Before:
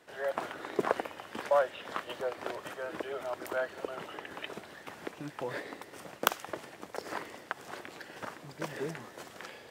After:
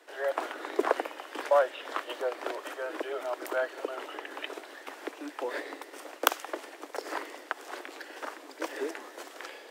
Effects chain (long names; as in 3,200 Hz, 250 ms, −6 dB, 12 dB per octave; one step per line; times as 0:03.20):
Butterworth high-pass 270 Hz 72 dB per octave
level +3 dB